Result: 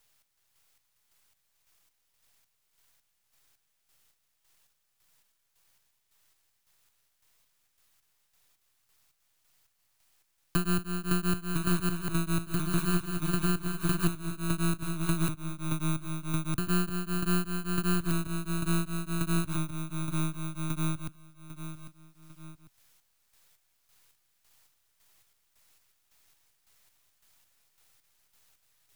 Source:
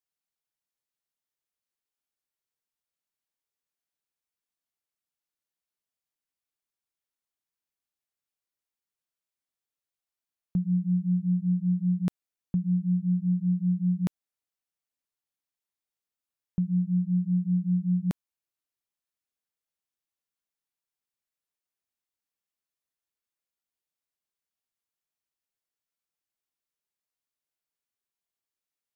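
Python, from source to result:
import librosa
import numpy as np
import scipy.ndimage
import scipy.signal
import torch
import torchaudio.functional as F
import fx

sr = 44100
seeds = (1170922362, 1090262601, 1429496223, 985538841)

p1 = fx.bit_reversed(x, sr, seeds[0], block=32)
p2 = fx.chopper(p1, sr, hz=1.8, depth_pct=65, duty_pct=40)
p3 = fx.echo_pitch(p2, sr, ms=373, semitones=-1, count=2, db_per_echo=-6.0)
p4 = fx.rider(p3, sr, range_db=5, speed_s=0.5)
p5 = p3 + (p4 * 10.0 ** (2.0 / 20.0))
p6 = fx.graphic_eq_10(p5, sr, hz=(125, 250, 500), db=(7, -12, -5))
p7 = np.maximum(p6, 0.0)
p8 = p7 + fx.echo_feedback(p7, sr, ms=798, feedback_pct=25, wet_db=-23.0, dry=0)
y = fx.band_squash(p8, sr, depth_pct=70)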